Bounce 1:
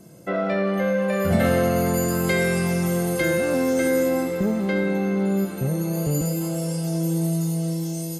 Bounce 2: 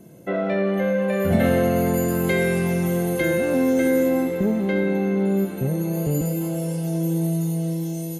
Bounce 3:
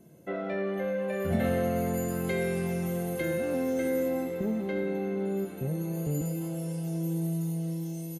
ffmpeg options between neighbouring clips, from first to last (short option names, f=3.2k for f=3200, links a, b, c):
-af "equalizer=f=250:t=o:w=0.33:g=4,equalizer=f=400:t=o:w=0.33:g=3,equalizer=f=1.25k:t=o:w=0.33:g=-6,equalizer=f=5k:t=o:w=0.33:g=-11,equalizer=f=8k:t=o:w=0.33:g=-8"
-filter_complex "[0:a]asplit=2[a][b];[b]adelay=13,volume=-10.5dB[c];[a][c]amix=inputs=2:normalize=0,volume=-9dB"